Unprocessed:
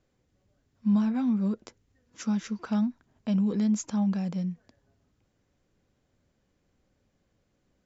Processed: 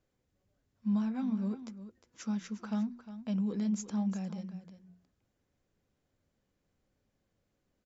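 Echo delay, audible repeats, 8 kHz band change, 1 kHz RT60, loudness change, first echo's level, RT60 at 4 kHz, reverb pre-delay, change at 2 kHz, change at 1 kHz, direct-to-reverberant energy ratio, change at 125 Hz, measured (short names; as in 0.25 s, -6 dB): 0.356 s, 1, n/a, none, -6.5 dB, -13.0 dB, none, none, -6.5 dB, -6.5 dB, none, -7.0 dB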